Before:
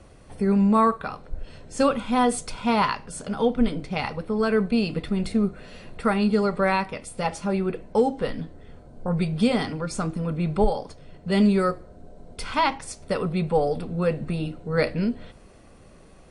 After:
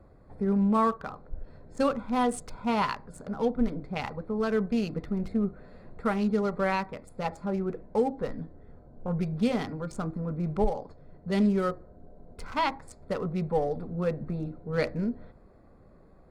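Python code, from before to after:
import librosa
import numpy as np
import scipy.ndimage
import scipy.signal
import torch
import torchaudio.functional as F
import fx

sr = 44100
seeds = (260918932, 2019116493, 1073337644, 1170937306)

y = fx.wiener(x, sr, points=15)
y = F.gain(torch.from_numpy(y), -5.0).numpy()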